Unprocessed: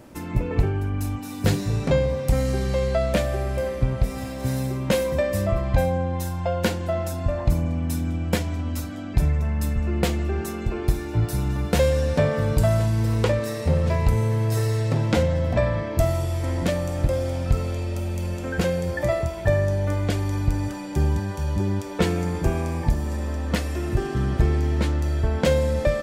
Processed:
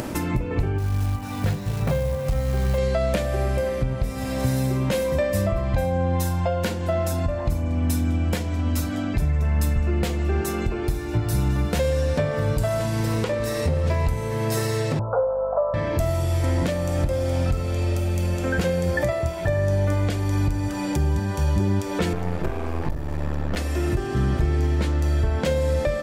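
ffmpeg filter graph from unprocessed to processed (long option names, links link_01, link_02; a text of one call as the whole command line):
ffmpeg -i in.wav -filter_complex "[0:a]asettb=1/sr,asplit=3[link_01][link_02][link_03];[link_01]atrim=end=0.784[link_04];[link_02]atrim=start=0.78:end=2.78,asetpts=PTS-STARTPTS,afade=type=in:duration=0.004:curve=qsin,afade=type=out:start_time=1.996:duration=0.004:curve=qsin,lowpass=frequency=1500:poles=1,acrusher=bits=6:mode=log:mix=0:aa=0.000001,equalizer=frequency=310:width=1.4:gain=-11.5[link_05];[link_03]atrim=start=2.776[link_06];[link_04][link_05]acrossfade=duration=0.004:curve1=hsin:curve2=qsin[link_07];[link_07][link_06]acrossfade=duration=0.004:curve1=qsin:curve2=hsin,asettb=1/sr,asplit=3[link_08][link_09][link_10];[link_08]atrim=end=14.994[link_11];[link_09]atrim=start=14.99:end=15.74,asetpts=PTS-STARTPTS,afade=type=in:duration=0.004:curve=qsin,afade=type=out:start_time=0.746:duration=0.004:curve=qsin,asuperpass=centerf=790:order=20:qfactor=0.83,aeval=exprs='val(0)+0.00447*(sin(2*PI*50*n/s)+sin(2*PI*2*50*n/s)/2+sin(2*PI*3*50*n/s)/3+sin(2*PI*4*50*n/s)/4+sin(2*PI*5*50*n/s)/5)':channel_layout=same[link_12];[link_10]atrim=start=15.736[link_13];[link_11][link_12]acrossfade=duration=0.004:curve1=hsin:curve2=qsin[link_14];[link_14][link_13]acrossfade=duration=0.004:curve1=qsin:curve2=hsin,asettb=1/sr,asplit=3[link_15][link_16][link_17];[link_15]atrim=end=22.134[link_18];[link_16]atrim=start=22.13:end=23.57,asetpts=PTS-STARTPTS,afade=type=in:duration=0.004:curve=qsin,afade=type=out:start_time=1.436:duration=0.004:curve=qsin,equalizer=frequency=8100:width_type=o:width=1.9:gain=-11,aeval=exprs='max(val(0),0)':channel_layout=same[link_19];[link_17]atrim=start=23.566[link_20];[link_18][link_19]acrossfade=duration=0.004:curve1=hsin:curve2=qsin[link_21];[link_21][link_20]acrossfade=duration=0.004:curve1=qsin:curve2=hsin,bandreject=frequency=55.47:width_type=h:width=4,bandreject=frequency=110.94:width_type=h:width=4,bandreject=frequency=166.41:width_type=h:width=4,bandreject=frequency=221.88:width_type=h:width=4,bandreject=frequency=277.35:width_type=h:width=4,bandreject=frequency=332.82:width_type=h:width=4,bandreject=frequency=388.29:width_type=h:width=4,bandreject=frequency=443.76:width_type=h:width=4,bandreject=frequency=499.23:width_type=h:width=4,bandreject=frequency=554.7:width_type=h:width=4,bandreject=frequency=610.17:width_type=h:width=4,bandreject=frequency=665.64:width_type=h:width=4,bandreject=frequency=721.11:width_type=h:width=4,bandreject=frequency=776.58:width_type=h:width=4,bandreject=frequency=832.05:width_type=h:width=4,bandreject=frequency=887.52:width_type=h:width=4,bandreject=frequency=942.99:width_type=h:width=4,bandreject=frequency=998.46:width_type=h:width=4,bandreject=frequency=1053.93:width_type=h:width=4,bandreject=frequency=1109.4:width_type=h:width=4,bandreject=frequency=1164.87:width_type=h:width=4,acompressor=mode=upward:threshold=-24dB:ratio=2.5,alimiter=limit=-17.5dB:level=0:latency=1:release=352,volume=4.5dB" out.wav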